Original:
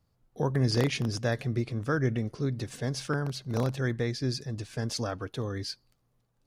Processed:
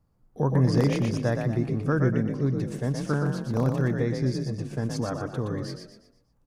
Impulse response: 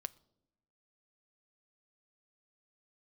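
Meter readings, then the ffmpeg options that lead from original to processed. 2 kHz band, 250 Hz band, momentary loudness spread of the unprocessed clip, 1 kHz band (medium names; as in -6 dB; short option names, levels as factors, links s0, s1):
0.0 dB, +6.0 dB, 8 LU, +3.0 dB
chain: -filter_complex "[0:a]equalizer=f=100:t=o:w=0.67:g=-4,equalizer=f=1000:t=o:w=0.67:g=3,equalizer=f=4000:t=o:w=0.67:g=-5,asplit=6[s0][s1][s2][s3][s4][s5];[s1]adelay=120,afreqshift=37,volume=0.562[s6];[s2]adelay=240,afreqshift=74,volume=0.219[s7];[s3]adelay=360,afreqshift=111,volume=0.0851[s8];[s4]adelay=480,afreqshift=148,volume=0.0335[s9];[s5]adelay=600,afreqshift=185,volume=0.013[s10];[s0][s6][s7][s8][s9][s10]amix=inputs=6:normalize=0,asplit=2[s11][s12];[1:a]atrim=start_sample=2205,lowpass=2200,lowshelf=f=410:g=10.5[s13];[s12][s13]afir=irnorm=-1:irlink=0,volume=0.794[s14];[s11][s14]amix=inputs=2:normalize=0,volume=0.708"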